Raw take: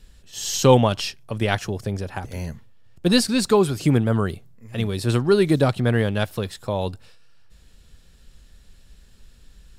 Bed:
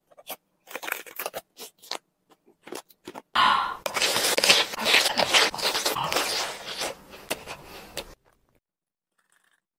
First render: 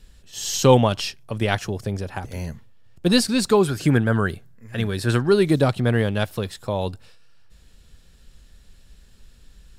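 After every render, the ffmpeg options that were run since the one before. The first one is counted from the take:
-filter_complex "[0:a]asettb=1/sr,asplit=3[a][b][c];[a]atrim=end=3.684[d];[b]atrim=start=3.68:end=5.29,asetpts=PTS-STARTPTS,afade=t=in:d=0.004:c=qsin,afade=t=out:st=1.606:d=0.004:c=qsin,equalizer=f=1.6k:w=4:g=11[e];[c]atrim=start=5.286[f];[d][e]acrossfade=d=0.004:c1=hsin:c2=qsin[g];[g][f]acrossfade=d=0.004:c1=qsin:c2=hsin"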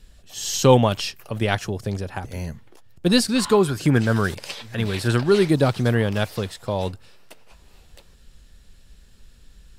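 -filter_complex "[1:a]volume=-16.5dB[a];[0:a][a]amix=inputs=2:normalize=0"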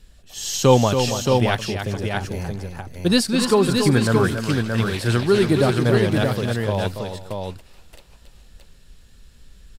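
-af "aecho=1:1:279|427|624:0.422|0.126|0.596"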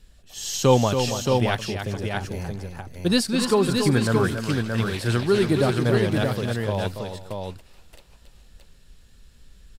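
-af "volume=-3dB"

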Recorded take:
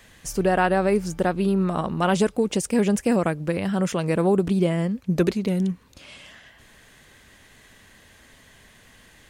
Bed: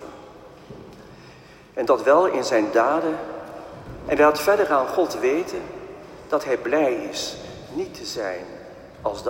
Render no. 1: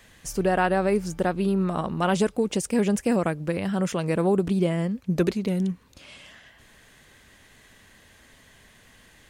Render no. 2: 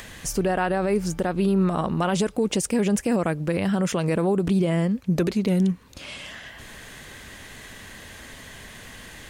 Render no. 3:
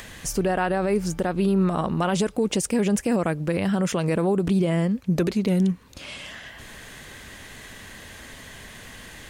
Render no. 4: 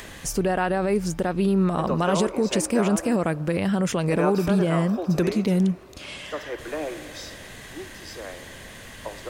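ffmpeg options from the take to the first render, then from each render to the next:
-af "volume=-2dB"
-filter_complex "[0:a]asplit=2[a][b];[b]acompressor=mode=upward:threshold=-29dB:ratio=2.5,volume=-3dB[c];[a][c]amix=inputs=2:normalize=0,alimiter=limit=-13.5dB:level=0:latency=1:release=56"
-af anull
-filter_complex "[1:a]volume=-11dB[a];[0:a][a]amix=inputs=2:normalize=0"

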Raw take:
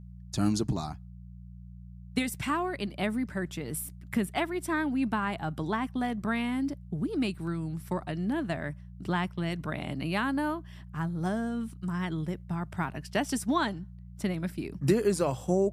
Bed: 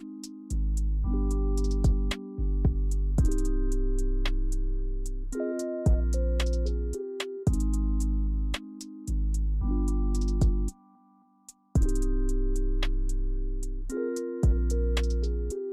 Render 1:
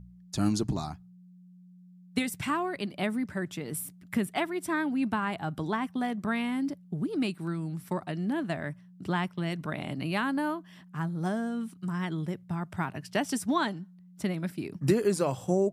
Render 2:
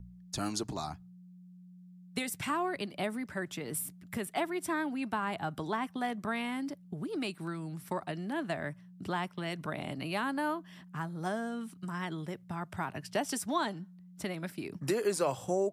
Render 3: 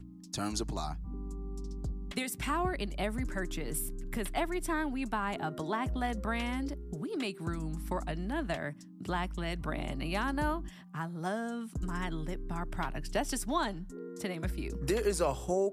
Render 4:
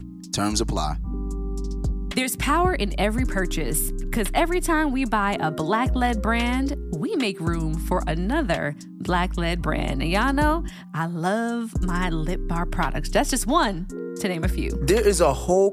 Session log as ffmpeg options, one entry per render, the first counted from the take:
-af "bandreject=f=60:t=h:w=4,bandreject=f=120:t=h:w=4"
-filter_complex "[0:a]acrossover=split=400|970|4200[a][b][c][d];[a]acompressor=threshold=-39dB:ratio=6[e];[c]alimiter=level_in=6dB:limit=-24dB:level=0:latency=1:release=108,volume=-6dB[f];[e][b][f][d]amix=inputs=4:normalize=0"
-filter_complex "[1:a]volume=-13.5dB[a];[0:a][a]amix=inputs=2:normalize=0"
-af "volume=11.5dB"

